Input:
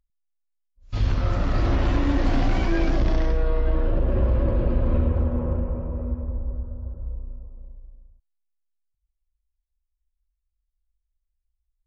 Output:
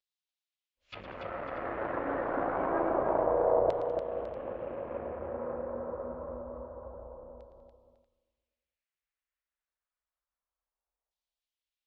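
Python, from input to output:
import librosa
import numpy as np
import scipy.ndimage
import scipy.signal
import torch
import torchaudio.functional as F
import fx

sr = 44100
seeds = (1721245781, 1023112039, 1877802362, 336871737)

y = fx.fold_sine(x, sr, drive_db=4, ceiling_db=-13.0)
y = fx.peak_eq(y, sr, hz=530.0, db=8.0, octaves=1.0)
y = fx.env_lowpass_down(y, sr, base_hz=1000.0, full_db=-15.5)
y = fx.vibrato(y, sr, rate_hz=0.34, depth_cents=18.0)
y = fx.filter_lfo_bandpass(y, sr, shape='saw_down', hz=0.27, low_hz=770.0, high_hz=4000.0, q=2.0)
y = fx.echo_multitap(y, sr, ms=(112, 195, 287, 550, 637), db=(-11.5, -17.0, -6.5, -14.0, -17.0))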